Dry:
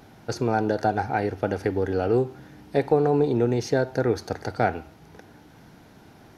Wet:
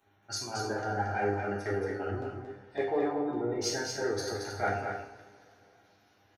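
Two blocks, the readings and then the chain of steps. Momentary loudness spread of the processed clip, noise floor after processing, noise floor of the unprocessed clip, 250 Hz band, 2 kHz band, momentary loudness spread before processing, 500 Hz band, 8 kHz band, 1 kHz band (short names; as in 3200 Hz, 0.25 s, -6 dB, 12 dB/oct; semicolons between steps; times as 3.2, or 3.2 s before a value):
8 LU, -66 dBFS, -51 dBFS, -9.5 dB, -3.5 dB, 7 LU, -9.0 dB, +5.0 dB, -6.5 dB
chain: spectral gate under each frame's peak -30 dB strong; tilt +2.5 dB/oct; LFO notch square 1.8 Hz 450–4900 Hz; in parallel at -11.5 dB: soft clip -25 dBFS, distortion -9 dB; on the sum: resonator 100 Hz, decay 0.16 s, harmonics all, mix 80%; on a send: echo 0.227 s -4.5 dB; on the sum: two-slope reverb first 0.6 s, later 5 s, from -21 dB, DRR -3.5 dB; three-band expander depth 40%; gain -6 dB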